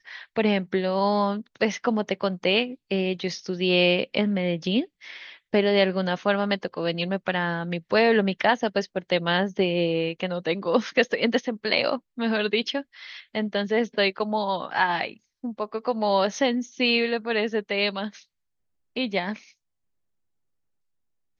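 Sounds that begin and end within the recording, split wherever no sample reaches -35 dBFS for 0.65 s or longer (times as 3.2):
18.96–19.38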